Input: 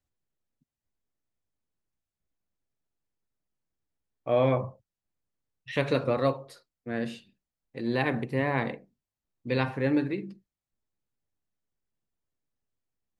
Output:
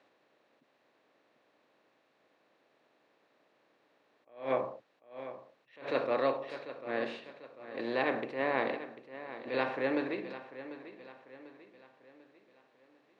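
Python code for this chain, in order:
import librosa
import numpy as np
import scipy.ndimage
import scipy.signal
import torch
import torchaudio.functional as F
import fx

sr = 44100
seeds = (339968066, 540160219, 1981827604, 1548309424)

y = fx.bin_compress(x, sr, power=0.6)
y = scipy.signal.sosfilt(scipy.signal.butter(2, 370.0, 'highpass', fs=sr, output='sos'), y)
y = fx.air_absorb(y, sr, metres=130.0)
y = fx.echo_feedback(y, sr, ms=744, feedback_pct=44, wet_db=-13.5)
y = fx.attack_slew(y, sr, db_per_s=150.0)
y = y * librosa.db_to_amplitude(-4.0)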